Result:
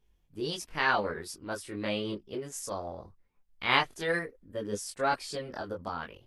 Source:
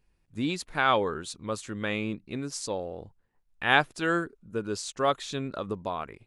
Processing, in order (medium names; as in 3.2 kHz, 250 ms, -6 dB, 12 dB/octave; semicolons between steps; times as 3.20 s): chorus voices 6, 0.39 Hz, delay 22 ms, depth 2.9 ms; formant shift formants +4 st